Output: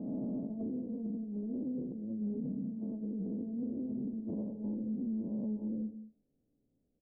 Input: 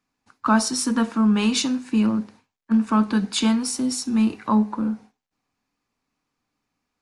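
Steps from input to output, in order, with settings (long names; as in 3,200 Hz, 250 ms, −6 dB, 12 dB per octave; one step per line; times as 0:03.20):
peak hold with a rise ahead of every peak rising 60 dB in 1.24 s
Butterworth low-pass 590 Hz 48 dB per octave
single-tap delay 938 ms −13.5 dB
compressor whose output falls as the input rises −29 dBFS, ratio −1
on a send at −14.5 dB: spectral tilt −2 dB per octave + convolution reverb, pre-delay 3 ms
on the sum: brickwall limiter −24 dBFS, peak gain reduction 9 dB
level −6.5 dB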